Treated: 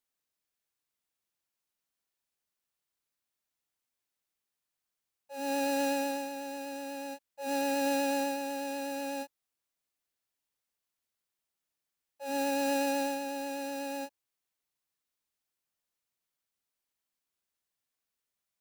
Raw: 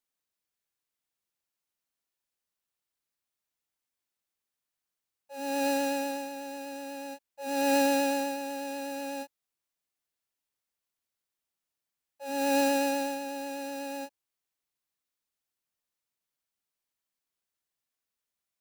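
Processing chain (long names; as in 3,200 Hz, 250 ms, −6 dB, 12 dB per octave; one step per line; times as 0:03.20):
brickwall limiter −22.5 dBFS, peak gain reduction 7.5 dB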